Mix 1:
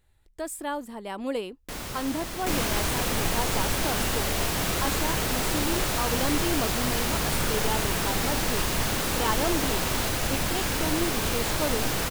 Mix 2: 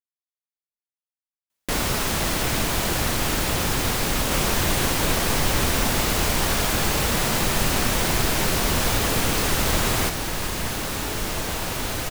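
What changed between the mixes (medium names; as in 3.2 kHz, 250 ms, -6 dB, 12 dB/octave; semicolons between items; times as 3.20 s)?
speech: muted; first sound +12.0 dB; second sound: entry +1.85 s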